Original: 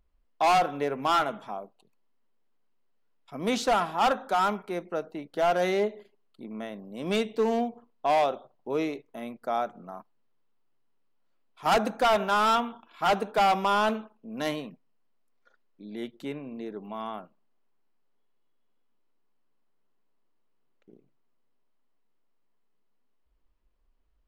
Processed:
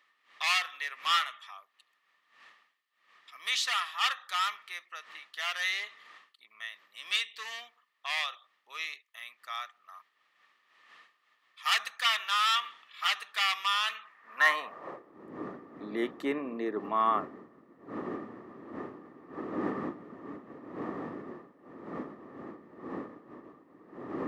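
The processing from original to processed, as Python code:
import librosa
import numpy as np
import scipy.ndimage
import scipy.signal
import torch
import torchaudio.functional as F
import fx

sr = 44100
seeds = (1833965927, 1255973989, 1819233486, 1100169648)

y = fx.dmg_wind(x, sr, seeds[0], corner_hz=240.0, level_db=-37.0)
y = fx.small_body(y, sr, hz=(1200.0, 1800.0), ring_ms=20, db=18)
y = fx.filter_sweep_highpass(y, sr, from_hz=3100.0, to_hz=310.0, start_s=13.87, end_s=15.21, q=1.7)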